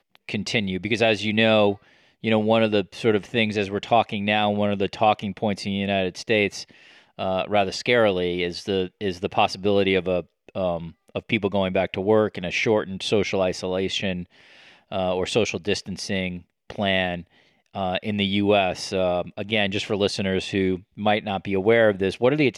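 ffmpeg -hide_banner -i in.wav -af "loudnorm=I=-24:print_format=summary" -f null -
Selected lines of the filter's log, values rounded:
Input Integrated:    -23.0 LUFS
Input True Peak:      -6.6 dBTP
Input LRA:             3.2 LU
Input Threshold:     -33.3 LUFS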